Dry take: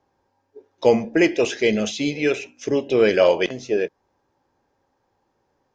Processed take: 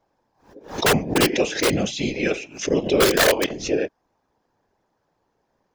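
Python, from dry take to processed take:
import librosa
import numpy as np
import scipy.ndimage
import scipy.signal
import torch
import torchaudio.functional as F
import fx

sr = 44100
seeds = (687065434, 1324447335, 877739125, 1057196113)

y = (np.mod(10.0 ** (8.5 / 20.0) * x + 1.0, 2.0) - 1.0) / 10.0 ** (8.5 / 20.0)
y = fx.whisperise(y, sr, seeds[0])
y = fx.pre_swell(y, sr, db_per_s=130.0)
y = y * librosa.db_to_amplitude(-1.0)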